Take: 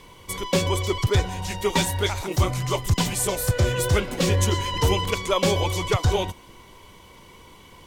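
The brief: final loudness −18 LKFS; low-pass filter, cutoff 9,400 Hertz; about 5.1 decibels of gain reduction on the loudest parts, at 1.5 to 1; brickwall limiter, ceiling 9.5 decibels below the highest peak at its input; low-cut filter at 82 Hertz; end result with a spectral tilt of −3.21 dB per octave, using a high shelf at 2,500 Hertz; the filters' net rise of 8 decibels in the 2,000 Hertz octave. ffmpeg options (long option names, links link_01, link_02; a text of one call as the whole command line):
ffmpeg -i in.wav -af "highpass=82,lowpass=9400,equalizer=frequency=2000:width_type=o:gain=8,highshelf=frequency=2500:gain=3.5,acompressor=threshold=-29dB:ratio=1.5,volume=10.5dB,alimiter=limit=-8.5dB:level=0:latency=1" out.wav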